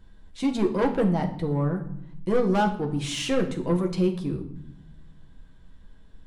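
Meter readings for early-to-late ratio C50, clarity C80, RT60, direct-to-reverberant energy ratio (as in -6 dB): 11.0 dB, 14.0 dB, 0.75 s, 2.0 dB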